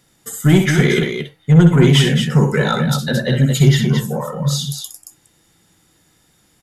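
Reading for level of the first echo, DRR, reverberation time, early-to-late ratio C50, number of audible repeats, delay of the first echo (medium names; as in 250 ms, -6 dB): -7.5 dB, no reverb, no reverb, no reverb, 3, 63 ms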